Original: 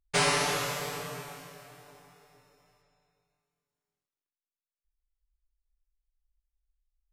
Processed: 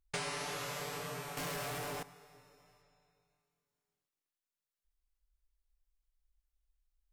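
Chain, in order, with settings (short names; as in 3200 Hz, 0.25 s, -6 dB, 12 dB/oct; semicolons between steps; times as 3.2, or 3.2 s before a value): 1.37–2.03 sample leveller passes 5; compressor 5:1, threshold -38 dBFS, peak gain reduction 14.5 dB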